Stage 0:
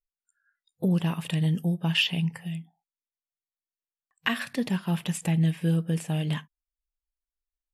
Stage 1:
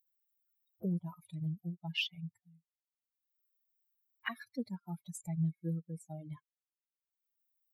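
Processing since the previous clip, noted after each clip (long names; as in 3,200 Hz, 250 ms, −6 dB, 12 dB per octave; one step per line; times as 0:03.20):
spectral dynamics exaggerated over time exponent 3
upward compression, threshold −44 dBFS
level −7.5 dB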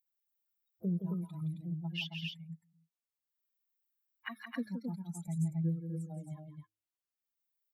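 hum removal 106.2 Hz, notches 4
dynamic equaliser 220 Hz, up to +6 dB, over −49 dBFS, Q 0.86
on a send: loudspeakers that aren't time-aligned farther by 58 metres −7 dB, 92 metres −4 dB
on the sum: level −4.5 dB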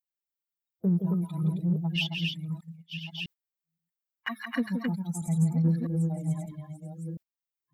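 delay that plays each chunk backwards 652 ms, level −7.5 dB
noise gate −54 dBFS, range −19 dB
in parallel at −9.5 dB: soft clipping −38 dBFS, distortion −8 dB
on the sum: level +7.5 dB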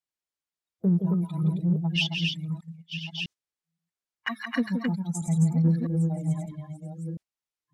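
low-pass filter 9,000 Hz 12 dB per octave
dynamic equaliser 6,000 Hz, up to +6 dB, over −53 dBFS, Q 1.3
level +2.5 dB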